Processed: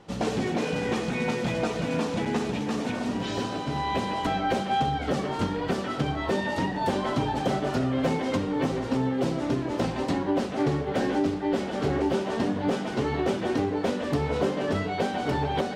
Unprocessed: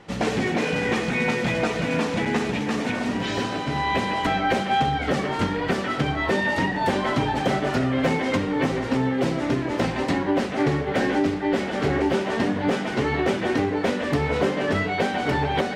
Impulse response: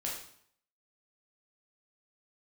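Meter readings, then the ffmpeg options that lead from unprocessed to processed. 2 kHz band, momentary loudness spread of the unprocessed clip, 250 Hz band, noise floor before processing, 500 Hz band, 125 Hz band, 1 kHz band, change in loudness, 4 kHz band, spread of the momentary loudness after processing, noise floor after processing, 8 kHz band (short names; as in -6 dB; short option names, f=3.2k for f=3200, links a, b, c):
-8.5 dB, 3 LU, -3.0 dB, -28 dBFS, -3.0 dB, -3.0 dB, -4.0 dB, -4.0 dB, -5.0 dB, 3 LU, -32 dBFS, -3.5 dB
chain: -af "equalizer=f=2k:w=1.6:g=-7,volume=-3dB"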